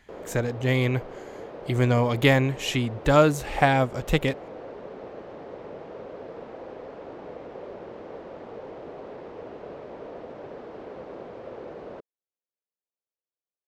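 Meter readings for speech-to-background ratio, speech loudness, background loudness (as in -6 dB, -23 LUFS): 17.0 dB, -23.5 LUFS, -40.5 LUFS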